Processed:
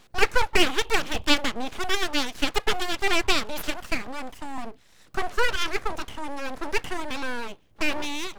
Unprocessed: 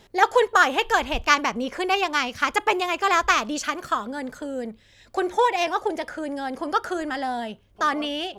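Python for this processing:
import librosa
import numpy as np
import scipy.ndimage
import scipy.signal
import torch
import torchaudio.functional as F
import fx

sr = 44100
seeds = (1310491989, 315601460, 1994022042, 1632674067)

y = fx.highpass(x, sr, hz=220.0, slope=24, at=(4.07, 4.58))
y = np.abs(y)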